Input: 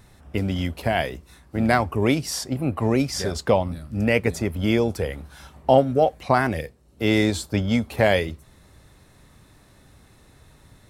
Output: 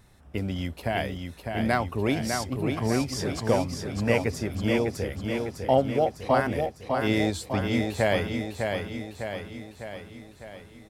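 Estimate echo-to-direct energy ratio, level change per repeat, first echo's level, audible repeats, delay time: -3.5 dB, -5.0 dB, -5.0 dB, 7, 0.603 s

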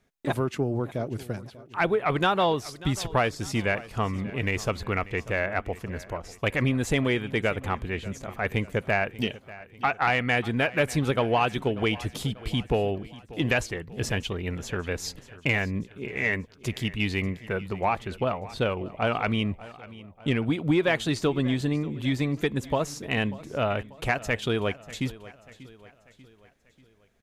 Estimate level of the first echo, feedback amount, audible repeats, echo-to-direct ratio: -18.5 dB, 49%, 3, -17.5 dB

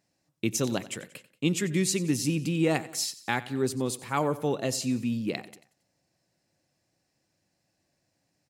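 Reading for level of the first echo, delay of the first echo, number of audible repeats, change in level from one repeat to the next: -17.5 dB, 91 ms, 3, -5.5 dB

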